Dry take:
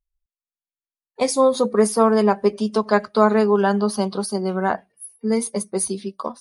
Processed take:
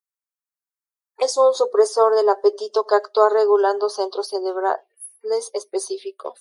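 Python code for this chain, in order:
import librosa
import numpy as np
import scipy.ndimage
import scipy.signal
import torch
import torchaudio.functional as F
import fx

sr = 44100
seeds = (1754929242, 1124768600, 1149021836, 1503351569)

y = fx.env_phaser(x, sr, low_hz=520.0, high_hz=2400.0, full_db=-19.0)
y = scipy.signal.sosfilt(scipy.signal.ellip(4, 1.0, 50, 380.0, 'highpass', fs=sr, output='sos'), y)
y = y * librosa.db_to_amplitude(3.0)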